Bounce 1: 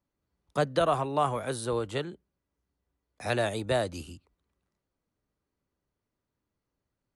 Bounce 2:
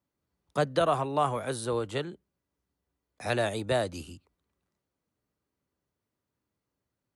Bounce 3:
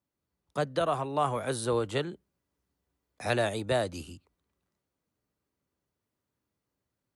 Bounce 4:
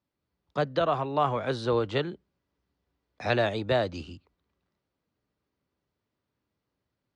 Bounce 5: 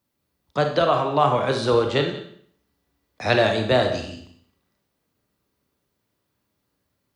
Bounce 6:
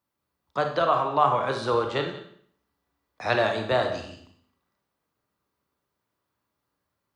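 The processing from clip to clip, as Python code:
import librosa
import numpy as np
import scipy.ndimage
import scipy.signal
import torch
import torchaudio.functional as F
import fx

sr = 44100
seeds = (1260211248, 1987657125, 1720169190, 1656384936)

y1 = scipy.signal.sosfilt(scipy.signal.butter(2, 67.0, 'highpass', fs=sr, output='sos'), x)
y2 = fx.rider(y1, sr, range_db=10, speed_s=0.5)
y3 = scipy.signal.sosfilt(scipy.signal.butter(4, 5100.0, 'lowpass', fs=sr, output='sos'), y2)
y3 = y3 * librosa.db_to_amplitude(2.5)
y4 = fx.high_shelf(y3, sr, hz=6800.0, db=11.0)
y4 = y4 + 10.0 ** (-17.0 / 20.0) * np.pad(y4, (int(180 * sr / 1000.0), 0))[:len(y4)]
y4 = fx.rev_schroeder(y4, sr, rt60_s=0.58, comb_ms=28, drr_db=4.5)
y4 = y4 * librosa.db_to_amplitude(5.5)
y5 = fx.peak_eq(y4, sr, hz=1100.0, db=8.0, octaves=1.3)
y5 = fx.hum_notches(y5, sr, base_hz=50, count=5)
y5 = y5 * librosa.db_to_amplitude(-7.5)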